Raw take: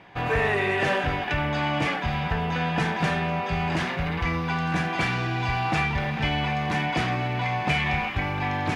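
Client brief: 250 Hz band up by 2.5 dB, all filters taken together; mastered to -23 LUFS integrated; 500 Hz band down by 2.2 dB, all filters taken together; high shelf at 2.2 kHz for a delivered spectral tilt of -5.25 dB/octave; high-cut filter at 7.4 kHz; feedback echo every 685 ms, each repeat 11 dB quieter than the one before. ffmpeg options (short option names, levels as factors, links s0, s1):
-af "lowpass=7400,equalizer=f=250:t=o:g=5,equalizer=f=500:t=o:g=-4,highshelf=f=2200:g=-6.5,aecho=1:1:685|1370|2055:0.282|0.0789|0.0221,volume=1.41"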